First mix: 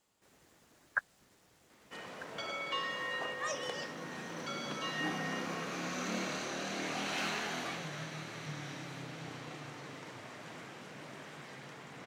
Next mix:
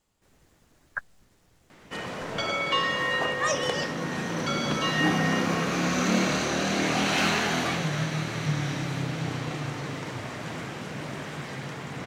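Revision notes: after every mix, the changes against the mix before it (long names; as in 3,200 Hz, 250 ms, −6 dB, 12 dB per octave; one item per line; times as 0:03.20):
background +11.0 dB
master: remove high-pass filter 260 Hz 6 dB per octave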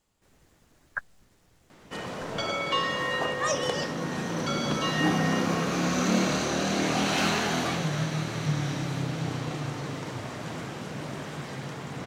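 background: add parametric band 2,100 Hz −4 dB 1.1 octaves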